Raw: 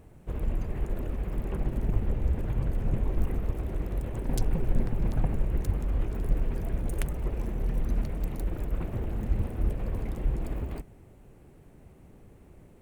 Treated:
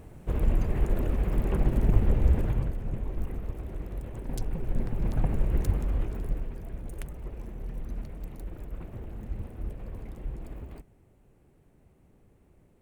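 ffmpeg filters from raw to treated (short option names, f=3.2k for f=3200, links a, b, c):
-af "volume=12.5dB,afade=t=out:st=2.36:d=0.41:silence=0.316228,afade=t=in:st=4.57:d=1.05:silence=0.421697,afade=t=out:st=5.62:d=0.92:silence=0.298538"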